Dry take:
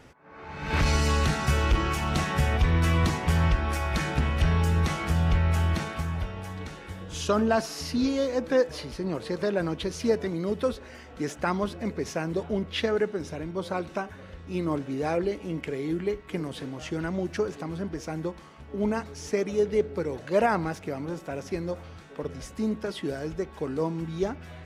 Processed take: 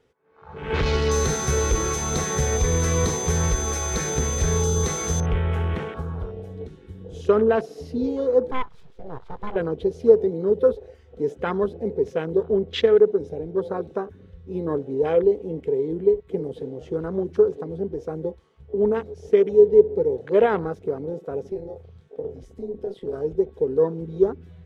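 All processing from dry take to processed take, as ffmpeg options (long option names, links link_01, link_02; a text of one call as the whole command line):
ffmpeg -i in.wav -filter_complex "[0:a]asettb=1/sr,asplit=3[link_01][link_02][link_03];[link_01]atrim=end=1.094[link_04];[link_02]atrim=start=1.09:end=5.26,asetpts=PTS-STARTPTS,afade=type=in:duration=0.004:curve=qsin,afade=type=out:start_time=4.166:duration=0.004:curve=qsin,aeval=exprs='val(0)+0.0447*sin(2*PI*6200*n/s)':channel_layout=same,equalizer=frequency=3000:width_type=o:width=0.32:gain=-14.5[link_05];[link_03]atrim=start=5.256[link_06];[link_04][link_05]acrossfade=duration=0.004:curve1=hsin:curve2=qsin[link_07];[link_07][link_06]acrossfade=duration=0.004:curve1=qsin:curve2=hsin,asettb=1/sr,asplit=3[link_08][link_09][link_10];[link_08]atrim=end=8.514[link_11];[link_09]atrim=start=8.51:end=9.56,asetpts=PTS-STARTPTS,afade=type=in:duration=0.004:curve=qsin,afade=type=out:start_time=1.046:duration=0.004:curve=qsin,highpass=310,lowpass=2700,aeval=exprs='abs(val(0))':channel_layout=same[link_12];[link_10]atrim=start=9.556[link_13];[link_11][link_12]acrossfade=duration=0.004:curve1=hsin:curve2=qsin[link_14];[link_14][link_13]acrossfade=duration=0.004:curve1=qsin:curve2=hsin,asettb=1/sr,asplit=3[link_15][link_16][link_17];[link_15]atrim=end=21.514[link_18];[link_16]atrim=start=21.51:end=23.13,asetpts=PTS-STARTPTS,afade=type=in:duration=0.004:curve=qsin,afade=type=out:start_time=1.616:duration=0.004:curve=qsin,acompressor=threshold=-30dB:ratio=4:attack=3.2:release=140:knee=1:detection=peak,tremolo=f=200:d=0.667,asplit=2[link_19][link_20];[link_20]adelay=26,volume=-6dB[link_21];[link_19][link_21]amix=inputs=2:normalize=0,atrim=end_sample=71442[link_22];[link_17]atrim=start=23.126[link_23];[link_18][link_22]acrossfade=duration=0.004:curve1=hsin:curve2=qsin[link_24];[link_24][link_23]acrossfade=duration=0.004:curve1=qsin:curve2=hsin,afwtdn=0.0178,superequalizer=7b=3.55:13b=1.58" out.wav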